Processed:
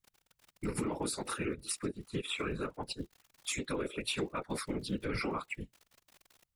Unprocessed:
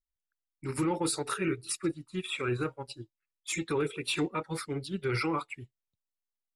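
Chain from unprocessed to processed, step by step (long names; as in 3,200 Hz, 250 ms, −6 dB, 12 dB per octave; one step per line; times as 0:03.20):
surface crackle 41 per second −46 dBFS
downward compressor 4 to 1, threshold −40 dBFS, peak gain reduction 12.5 dB
random phases in short frames
level +5.5 dB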